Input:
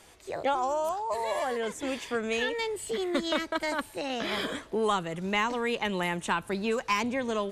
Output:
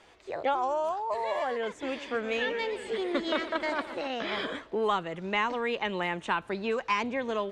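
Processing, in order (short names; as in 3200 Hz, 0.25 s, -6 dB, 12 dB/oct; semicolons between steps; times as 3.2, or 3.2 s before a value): LPF 5600 Hz 12 dB/oct; tone controls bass -6 dB, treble -6 dB; 1.79–4.08 warbling echo 0.125 s, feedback 79%, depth 201 cents, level -13.5 dB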